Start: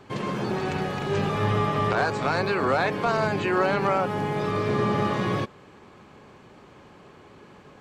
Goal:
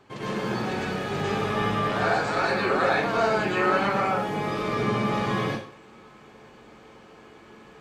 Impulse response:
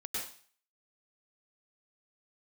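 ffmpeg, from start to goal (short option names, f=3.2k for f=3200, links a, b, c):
-filter_complex "[0:a]lowshelf=f=350:g=-4[a];[1:a]atrim=start_sample=2205[b];[a][b]afir=irnorm=-1:irlink=0"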